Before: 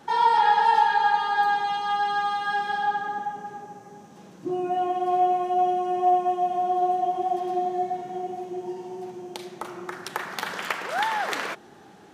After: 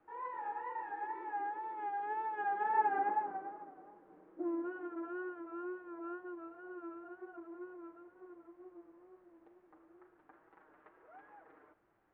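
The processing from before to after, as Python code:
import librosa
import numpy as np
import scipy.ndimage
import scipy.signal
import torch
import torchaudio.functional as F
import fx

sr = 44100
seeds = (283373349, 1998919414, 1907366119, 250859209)

y = fx.lower_of_two(x, sr, delay_ms=6.2)
y = fx.doppler_pass(y, sr, speed_mps=12, closest_m=4.3, pass_at_s=3.07)
y = fx.ladder_highpass(y, sr, hz=280.0, resonance_pct=50)
y = fx.wow_flutter(y, sr, seeds[0], rate_hz=2.1, depth_cents=77.0)
y = fx.quant_dither(y, sr, seeds[1], bits=12, dither='triangular')
y = scipy.signal.sosfilt(scipy.signal.butter(4, 1600.0, 'lowpass', fs=sr, output='sos'), y)
y = y * 10.0 ** (6.0 / 20.0)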